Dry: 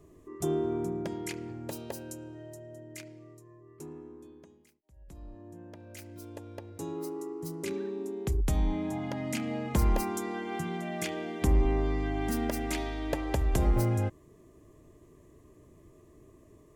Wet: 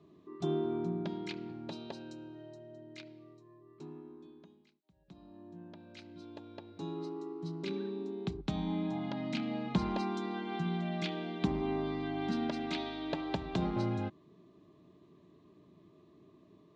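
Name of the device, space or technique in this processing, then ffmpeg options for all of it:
kitchen radio: -af "highpass=170,equalizer=f=180:t=q:w=4:g=9,equalizer=f=500:t=q:w=4:g=-9,equalizer=f=1.9k:t=q:w=4:g=-6,equalizer=f=3.9k:t=q:w=4:g=9,lowpass=f=4.5k:w=0.5412,lowpass=f=4.5k:w=1.3066,volume=-2dB"

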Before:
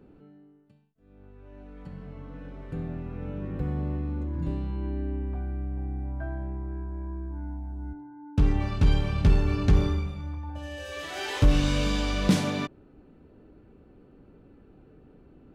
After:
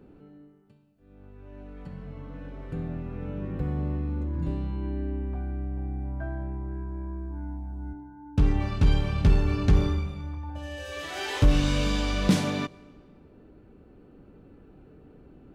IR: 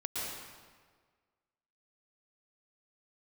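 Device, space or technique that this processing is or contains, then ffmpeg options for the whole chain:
ducked reverb: -filter_complex "[0:a]asplit=3[a][b][c];[1:a]atrim=start_sample=2205[d];[b][d]afir=irnorm=-1:irlink=0[e];[c]apad=whole_len=685604[f];[e][f]sidechaincompress=threshold=-39dB:ratio=5:attack=24:release=1300,volume=-11dB[g];[a][g]amix=inputs=2:normalize=0"

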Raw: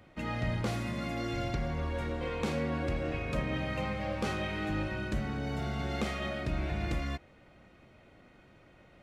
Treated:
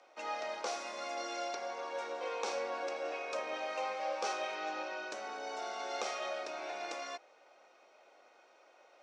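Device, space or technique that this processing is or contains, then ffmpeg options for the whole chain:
phone speaker on a table: -filter_complex "[0:a]highpass=f=470:w=0.5412,highpass=f=470:w=1.3066,equalizer=f=810:t=q:w=4:g=4,equalizer=f=1.9k:t=q:w=4:g=-7,equalizer=f=3.1k:t=q:w=4:g=-4,equalizer=f=5.7k:t=q:w=4:g=9,lowpass=f=8.1k:w=0.5412,lowpass=f=8.1k:w=1.3066,asettb=1/sr,asplit=3[a][b][c];[a]atrim=end=4.554[d];[b]atrim=start=4.55:end=5.1,asetpts=PTS-STARTPTS,afade=t=in:d=0.004:c=qsin,afade=t=out:st=0.546:d=0.004:c=qsin,lowpass=f=6.9k:w=0.5412,lowpass=f=6.9k:w=1.3066[e];[c]atrim=start=5.096[f];[d][e]acrossfade=d=0.004:c1=hsin:c2=qsin[g];[g][f]acrossfade=d=0.004:c1=qsin:c2=hsin,highpass=130"

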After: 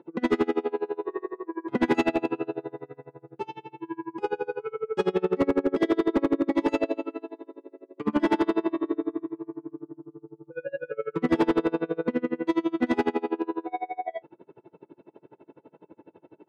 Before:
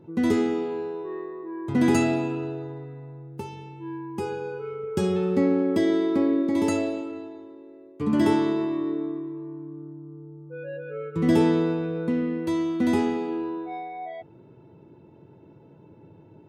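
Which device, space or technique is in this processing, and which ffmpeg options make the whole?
helicopter radio: -af "highpass=340,lowpass=2.9k,aeval=exprs='val(0)*pow(10,-30*(0.5-0.5*cos(2*PI*12*n/s))/20)':c=same,asoftclip=type=hard:threshold=-24.5dB,volume=9dB"

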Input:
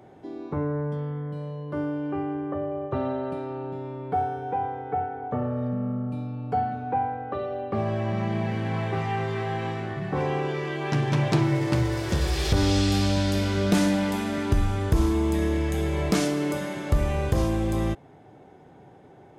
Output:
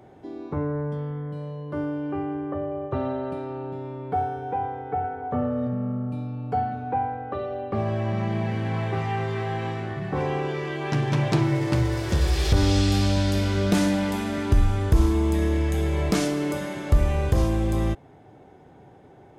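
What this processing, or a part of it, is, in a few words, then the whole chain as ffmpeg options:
low shelf boost with a cut just above: -filter_complex "[0:a]asettb=1/sr,asplit=3[a][b][c];[a]atrim=end=5.034[d];[b]atrim=start=5.03:end=5.67,asetpts=PTS-STARTPTS,afade=t=in:d=0.004:c=qsin,afade=t=out:st=0.636:d=0.004:c=qsin,asplit=2[e][f];[f]adelay=12,volume=-6dB[g];[e][g]amix=inputs=2:normalize=0,atrim=end_sample=28224[h];[c]atrim=start=5.666[i];[d][h]acrossfade=d=0.004:c1=hsin:c2=qsin[j];[j][i]acrossfade=d=0.004:c1=qsin:c2=hsin,lowshelf=f=100:g=6,equalizer=f=160:t=o:w=0.77:g=-2"

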